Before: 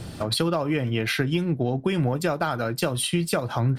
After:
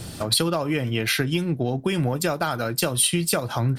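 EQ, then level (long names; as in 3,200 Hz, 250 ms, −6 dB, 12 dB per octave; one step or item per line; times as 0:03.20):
high-shelf EQ 4,400 Hz +10.5 dB
0.0 dB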